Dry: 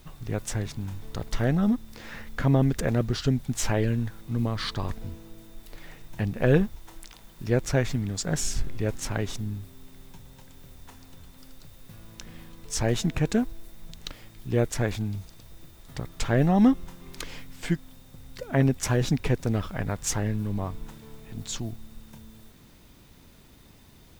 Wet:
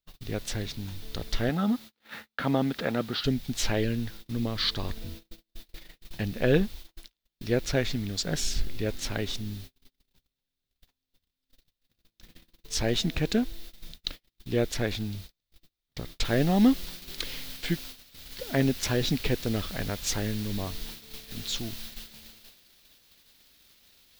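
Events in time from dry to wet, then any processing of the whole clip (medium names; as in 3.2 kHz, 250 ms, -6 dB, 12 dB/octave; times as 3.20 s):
1.49–3.24 s: cabinet simulation 160–4200 Hz, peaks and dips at 380 Hz -4 dB, 850 Hz +7 dB, 1.3 kHz +8 dB
16.25 s: noise floor step -52 dB -43 dB
whole clip: gate -39 dBFS, range -40 dB; graphic EQ 125/1000/4000/8000 Hz -6/-6/+9/-7 dB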